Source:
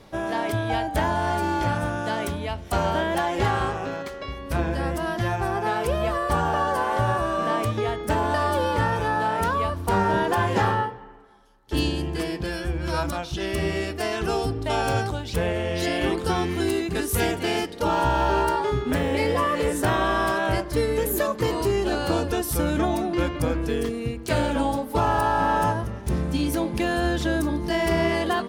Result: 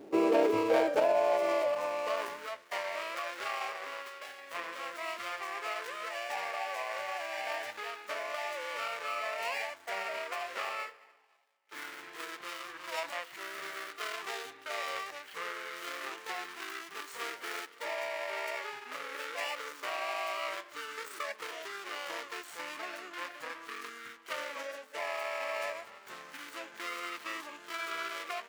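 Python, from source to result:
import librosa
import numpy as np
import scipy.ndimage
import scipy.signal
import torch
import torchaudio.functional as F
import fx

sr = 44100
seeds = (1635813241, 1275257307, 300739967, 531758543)

y = scipy.signal.medfilt(x, 25)
y = fx.rider(y, sr, range_db=4, speed_s=0.5)
y = fx.filter_sweep_highpass(y, sr, from_hz=430.0, to_hz=2000.0, start_s=0.06, end_s=2.8, q=1.2)
y = fx.formant_shift(y, sr, semitones=-6)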